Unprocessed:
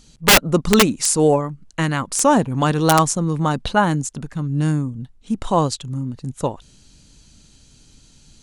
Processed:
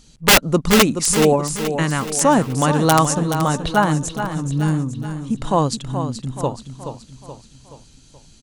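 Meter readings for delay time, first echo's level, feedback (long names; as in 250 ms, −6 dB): 426 ms, −9.0 dB, 48%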